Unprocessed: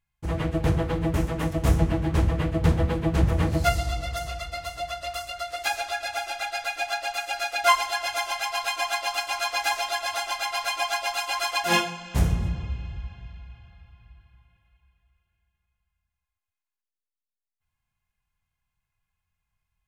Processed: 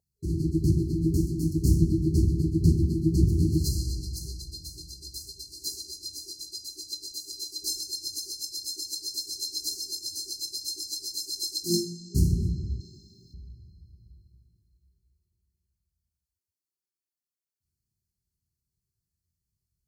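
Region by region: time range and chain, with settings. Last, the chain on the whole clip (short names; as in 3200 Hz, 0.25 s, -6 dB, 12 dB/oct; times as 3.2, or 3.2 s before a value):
12.8–13.34 HPF 230 Hz + high shelf 2900 Hz +10.5 dB
whole clip: HPF 64 Hz; FFT band-reject 400–4100 Hz; band shelf 610 Hz +15.5 dB 1.2 oct; gain +1.5 dB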